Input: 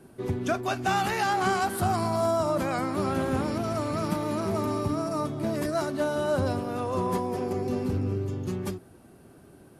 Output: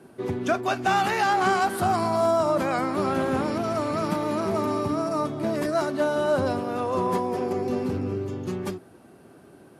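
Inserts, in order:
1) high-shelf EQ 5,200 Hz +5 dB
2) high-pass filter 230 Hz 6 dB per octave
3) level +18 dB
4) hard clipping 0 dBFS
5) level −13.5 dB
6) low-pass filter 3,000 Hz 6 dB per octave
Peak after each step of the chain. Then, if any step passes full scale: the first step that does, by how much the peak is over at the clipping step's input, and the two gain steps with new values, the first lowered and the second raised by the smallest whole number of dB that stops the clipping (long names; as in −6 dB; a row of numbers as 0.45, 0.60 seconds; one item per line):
−13.0, −14.0, +4.0, 0.0, −13.5, −13.5 dBFS
step 3, 4.0 dB
step 3 +14 dB, step 5 −9.5 dB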